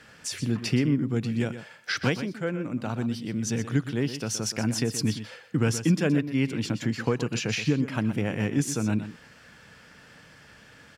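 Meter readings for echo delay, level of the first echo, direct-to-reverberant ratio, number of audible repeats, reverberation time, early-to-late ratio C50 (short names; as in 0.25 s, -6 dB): 0.123 s, -11.5 dB, none, 1, none, none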